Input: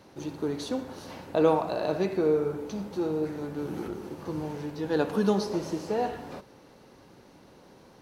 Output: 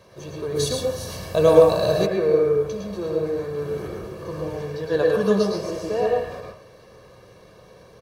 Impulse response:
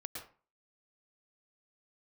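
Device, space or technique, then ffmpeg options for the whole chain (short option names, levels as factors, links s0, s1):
microphone above a desk: -filter_complex "[0:a]aecho=1:1:1.8:0.77[s0];[1:a]atrim=start_sample=2205[s1];[s0][s1]afir=irnorm=-1:irlink=0,asplit=3[s2][s3][s4];[s2]afade=t=out:st=0.55:d=0.02[s5];[s3]bass=f=250:g=8,treble=f=4000:g=14,afade=t=in:st=0.55:d=0.02,afade=t=out:st=2.05:d=0.02[s6];[s4]afade=t=in:st=2.05:d=0.02[s7];[s5][s6][s7]amix=inputs=3:normalize=0,volume=1.88"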